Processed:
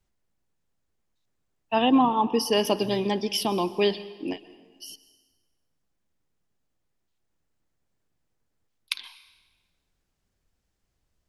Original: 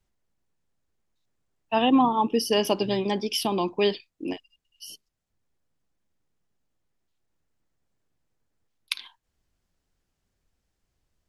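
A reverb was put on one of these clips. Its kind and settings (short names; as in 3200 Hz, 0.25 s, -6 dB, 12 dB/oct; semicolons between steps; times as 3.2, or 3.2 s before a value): plate-style reverb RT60 1.4 s, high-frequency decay 0.85×, pre-delay 0.11 s, DRR 16 dB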